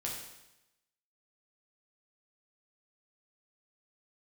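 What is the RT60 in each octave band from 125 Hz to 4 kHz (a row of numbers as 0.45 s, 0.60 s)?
0.95 s, 0.90 s, 0.90 s, 0.90 s, 0.90 s, 0.90 s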